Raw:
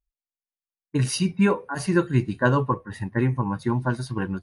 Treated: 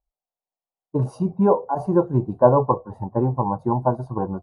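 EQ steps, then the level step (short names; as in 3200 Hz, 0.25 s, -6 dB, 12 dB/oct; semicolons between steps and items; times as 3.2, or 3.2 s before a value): dynamic EQ 1200 Hz, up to -5 dB, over -43 dBFS, Q 4.4; EQ curve 300 Hz 0 dB, 750 Hz +15 dB, 1200 Hz +1 dB, 1900 Hz -30 dB, 6900 Hz -22 dB; 0.0 dB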